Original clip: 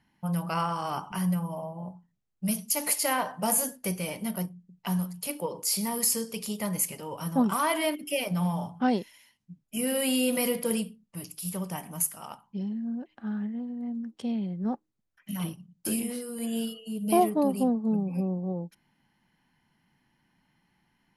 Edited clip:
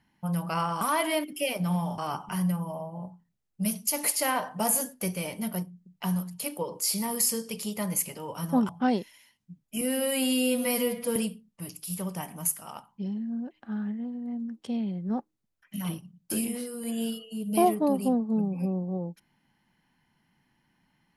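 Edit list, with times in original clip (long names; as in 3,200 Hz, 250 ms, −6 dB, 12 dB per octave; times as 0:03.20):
0:07.52–0:08.69: move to 0:00.81
0:09.81–0:10.71: time-stretch 1.5×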